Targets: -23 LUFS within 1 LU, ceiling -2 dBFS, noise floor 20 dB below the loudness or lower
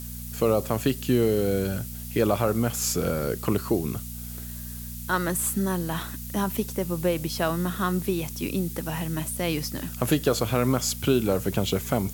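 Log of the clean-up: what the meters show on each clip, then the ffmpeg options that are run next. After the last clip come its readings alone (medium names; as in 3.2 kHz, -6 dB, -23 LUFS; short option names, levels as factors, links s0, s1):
hum 60 Hz; highest harmonic 240 Hz; hum level -35 dBFS; noise floor -37 dBFS; noise floor target -47 dBFS; loudness -26.5 LUFS; peak level -9.0 dBFS; loudness target -23.0 LUFS
-> -af "bandreject=f=60:t=h:w=4,bandreject=f=120:t=h:w=4,bandreject=f=180:t=h:w=4,bandreject=f=240:t=h:w=4"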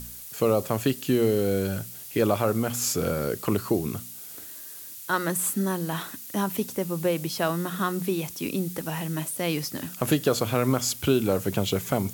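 hum not found; noise floor -41 dBFS; noise floor target -47 dBFS
-> -af "afftdn=nr=6:nf=-41"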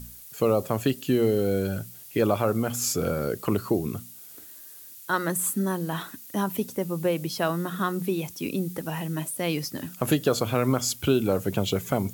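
noise floor -46 dBFS; noise floor target -47 dBFS
-> -af "afftdn=nr=6:nf=-46"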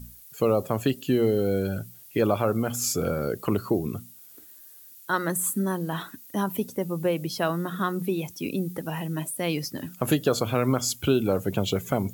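noise floor -49 dBFS; loudness -27.0 LUFS; peak level -9.5 dBFS; loudness target -23.0 LUFS
-> -af "volume=1.58"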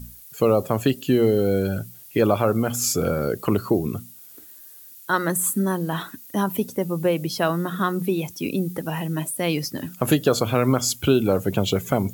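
loudness -23.0 LUFS; peak level -5.5 dBFS; noise floor -45 dBFS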